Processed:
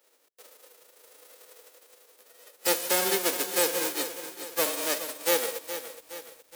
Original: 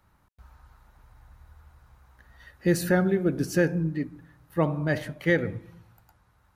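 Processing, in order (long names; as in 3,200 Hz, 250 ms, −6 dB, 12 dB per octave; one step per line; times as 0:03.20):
spectral envelope flattened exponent 0.1
Butterworth high-pass 240 Hz 36 dB per octave
parametric band 480 Hz +14.5 dB 0.6 octaves
in parallel at −4 dB: soft clipping −16 dBFS, distortion −14 dB
on the sum: feedback echo at a low word length 418 ms, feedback 55%, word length 7 bits, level −11 dB
level −7.5 dB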